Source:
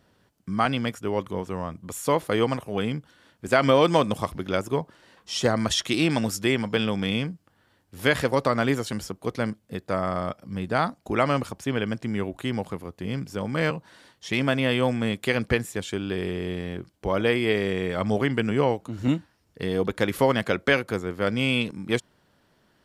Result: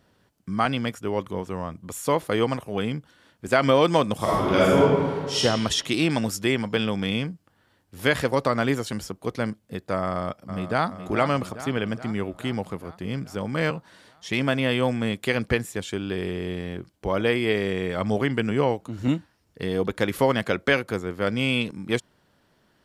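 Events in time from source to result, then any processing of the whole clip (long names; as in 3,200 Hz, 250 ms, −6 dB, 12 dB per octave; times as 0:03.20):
0:04.16–0:05.37: thrown reverb, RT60 1.8 s, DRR −8.5 dB
0:10.06–0:10.88: delay throw 420 ms, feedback 65%, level −10 dB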